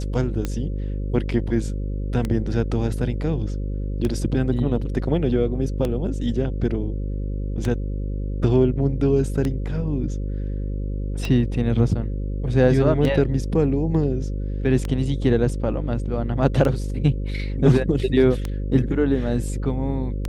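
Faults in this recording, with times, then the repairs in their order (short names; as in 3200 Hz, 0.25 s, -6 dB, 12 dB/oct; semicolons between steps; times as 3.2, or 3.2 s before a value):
buzz 50 Hz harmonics 11 -26 dBFS
tick 33 1/3 rpm -12 dBFS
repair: de-click; de-hum 50 Hz, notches 11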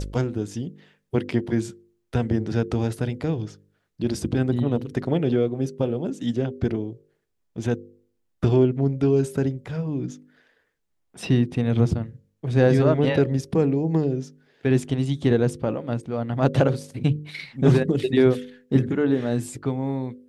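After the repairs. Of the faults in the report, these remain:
none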